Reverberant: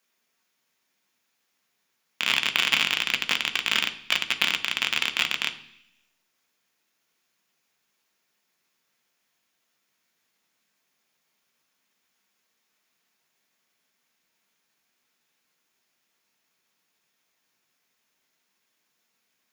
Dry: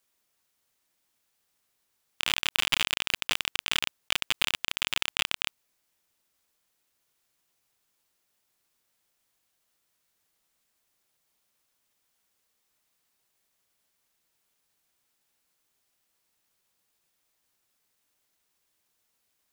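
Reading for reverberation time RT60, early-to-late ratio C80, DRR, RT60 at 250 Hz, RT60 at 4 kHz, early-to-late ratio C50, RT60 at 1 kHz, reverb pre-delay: 0.70 s, 16.5 dB, 6.0 dB, 0.95 s, 0.90 s, 14.0 dB, 0.70 s, 3 ms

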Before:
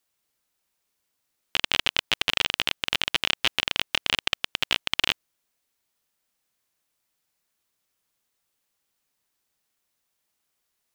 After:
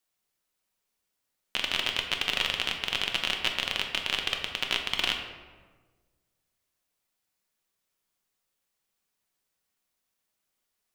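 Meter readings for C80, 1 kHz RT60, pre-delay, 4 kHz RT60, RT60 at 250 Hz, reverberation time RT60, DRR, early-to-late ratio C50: 7.5 dB, 1.3 s, 5 ms, 0.80 s, 1.6 s, 1.4 s, 2.5 dB, 6.0 dB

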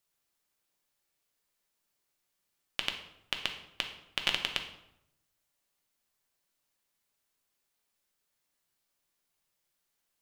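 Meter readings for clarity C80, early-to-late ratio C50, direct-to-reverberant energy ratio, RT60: 11.0 dB, 8.5 dB, 4.0 dB, 0.80 s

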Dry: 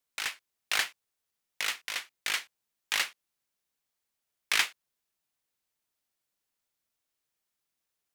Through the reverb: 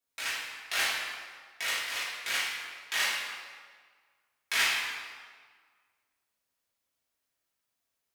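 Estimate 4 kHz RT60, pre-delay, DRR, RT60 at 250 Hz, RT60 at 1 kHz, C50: 1.2 s, 3 ms, −9.5 dB, 1.6 s, 1.7 s, −1.0 dB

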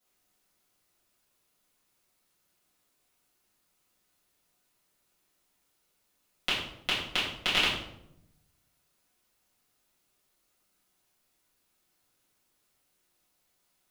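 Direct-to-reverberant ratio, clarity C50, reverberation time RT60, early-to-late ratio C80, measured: −10.5 dB, 3.0 dB, 0.80 s, 6.0 dB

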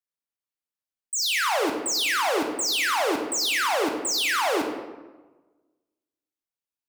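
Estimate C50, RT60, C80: 5.5 dB, 1.2 s, 7.0 dB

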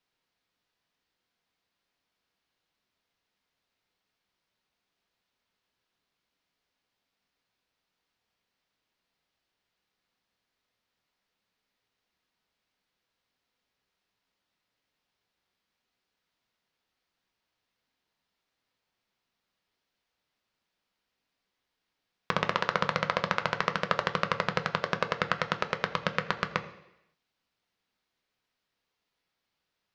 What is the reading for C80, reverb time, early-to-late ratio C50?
14.5 dB, 0.85 s, 13.0 dB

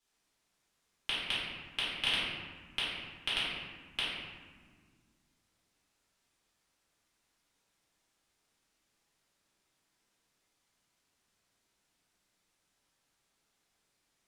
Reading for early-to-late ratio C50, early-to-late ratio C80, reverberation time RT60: −1.5 dB, 1.0 dB, 1.7 s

